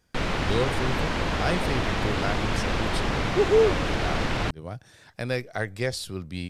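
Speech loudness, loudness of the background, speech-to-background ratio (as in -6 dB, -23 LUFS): -29.0 LUFS, -27.5 LUFS, -1.5 dB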